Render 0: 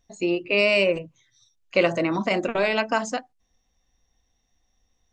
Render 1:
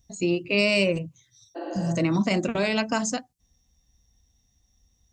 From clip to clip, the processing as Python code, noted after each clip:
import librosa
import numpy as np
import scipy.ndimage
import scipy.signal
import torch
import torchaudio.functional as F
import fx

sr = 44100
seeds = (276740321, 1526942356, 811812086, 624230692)

y = fx.spec_repair(x, sr, seeds[0], start_s=1.58, length_s=0.3, low_hz=250.0, high_hz=4700.0, source='after')
y = scipy.signal.sosfilt(scipy.signal.butter(2, 43.0, 'highpass', fs=sr, output='sos'), y)
y = fx.bass_treble(y, sr, bass_db=15, treble_db=13)
y = F.gain(torch.from_numpy(y), -4.5).numpy()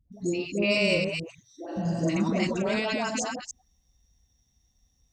y = fx.reverse_delay(x, sr, ms=154, wet_db=-3.5)
y = fx.dispersion(y, sr, late='highs', ms=124.0, hz=610.0)
y = F.gain(torch.from_numpy(y), -3.5).numpy()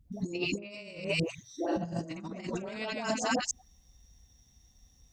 y = fx.over_compress(x, sr, threshold_db=-33.0, ratio=-0.5)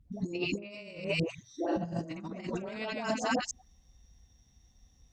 y = fx.high_shelf(x, sr, hz=6900.0, db=-11.5)